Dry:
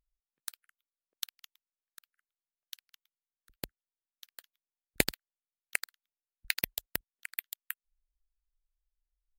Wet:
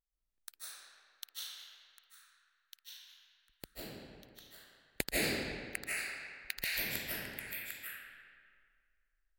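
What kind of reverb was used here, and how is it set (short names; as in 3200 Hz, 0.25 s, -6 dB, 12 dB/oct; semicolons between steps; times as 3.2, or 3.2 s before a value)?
digital reverb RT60 2 s, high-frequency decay 0.7×, pre-delay 0.115 s, DRR -9.5 dB; gain -9.5 dB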